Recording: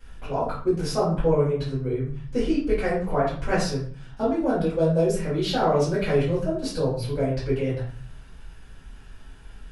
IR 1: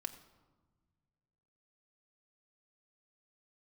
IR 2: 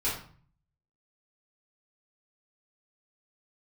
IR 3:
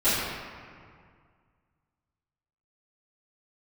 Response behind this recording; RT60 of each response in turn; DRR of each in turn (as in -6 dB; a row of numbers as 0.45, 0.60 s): 2; 1.4, 0.45, 2.1 s; 6.0, -10.5, -18.0 dB